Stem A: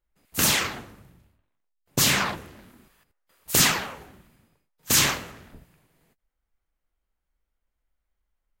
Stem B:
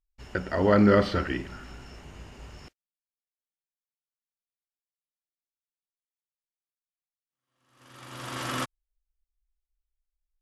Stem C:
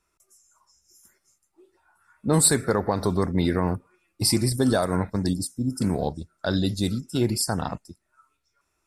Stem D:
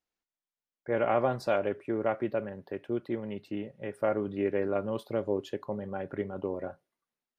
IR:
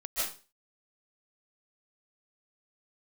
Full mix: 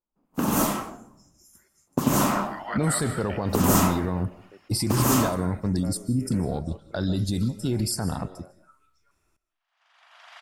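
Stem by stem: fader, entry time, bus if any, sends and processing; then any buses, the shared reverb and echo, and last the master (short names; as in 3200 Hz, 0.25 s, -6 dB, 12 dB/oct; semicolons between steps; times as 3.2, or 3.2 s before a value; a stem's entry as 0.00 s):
0.0 dB, 0.00 s, bus A, send -4 dB, echo send -6 dB, ten-band EQ 250 Hz +10 dB, 1000 Hz +9 dB, 2000 Hz -12 dB, 4000 Hz -11 dB; upward expander 1.5:1, over -39 dBFS
-9.0 dB, 2.00 s, bus A, send -13.5 dB, no echo send, spectral limiter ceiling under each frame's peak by 14 dB; elliptic high-pass 660 Hz, stop band 40 dB; reverb removal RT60 1.9 s
-0.5 dB, 0.50 s, no bus, send -20.5 dB, no echo send, low shelf 350 Hz +4.5 dB; limiter -17.5 dBFS, peak gain reduction 11 dB; high shelf 5000 Hz +5 dB
-14.5 dB, 1.80 s, bus A, send -19.5 dB, no echo send, dry
bus A: 0.0 dB, BPF 130–5200 Hz; compressor, threshold -28 dBFS, peak gain reduction 11.5 dB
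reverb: on, RT60 0.35 s, pre-delay 0.11 s
echo: echo 92 ms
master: tone controls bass +2 dB, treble -4 dB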